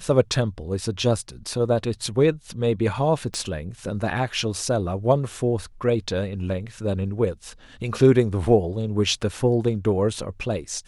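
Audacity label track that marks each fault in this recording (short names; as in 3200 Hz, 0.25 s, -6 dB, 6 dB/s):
3.340000	3.340000	pop -16 dBFS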